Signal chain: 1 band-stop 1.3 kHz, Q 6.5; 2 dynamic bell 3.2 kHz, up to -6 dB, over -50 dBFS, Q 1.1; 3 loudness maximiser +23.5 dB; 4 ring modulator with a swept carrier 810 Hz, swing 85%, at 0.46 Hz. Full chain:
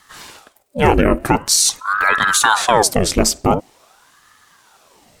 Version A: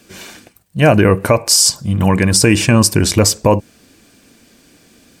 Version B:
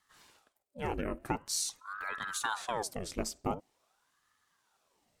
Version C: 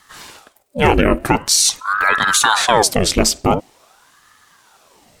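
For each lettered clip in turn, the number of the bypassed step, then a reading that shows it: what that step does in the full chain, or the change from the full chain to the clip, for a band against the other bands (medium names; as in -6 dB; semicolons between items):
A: 4, crest factor change -3.0 dB; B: 3, crest factor change +3.5 dB; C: 2, 4 kHz band +2.5 dB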